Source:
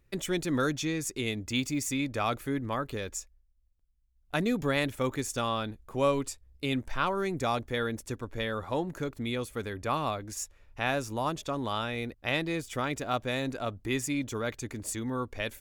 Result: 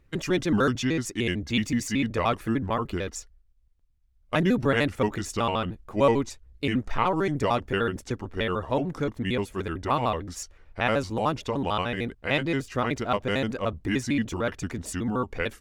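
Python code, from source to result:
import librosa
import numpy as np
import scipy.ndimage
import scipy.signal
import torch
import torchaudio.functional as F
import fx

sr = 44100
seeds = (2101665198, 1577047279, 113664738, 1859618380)

y = fx.pitch_trill(x, sr, semitones=-3.5, every_ms=75)
y = fx.lowpass(y, sr, hz=3700.0, slope=6)
y = y * librosa.db_to_amplitude(6.0)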